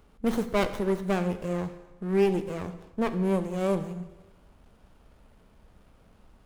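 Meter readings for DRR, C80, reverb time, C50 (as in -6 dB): 10.0 dB, 14.0 dB, 1.1 s, 12.5 dB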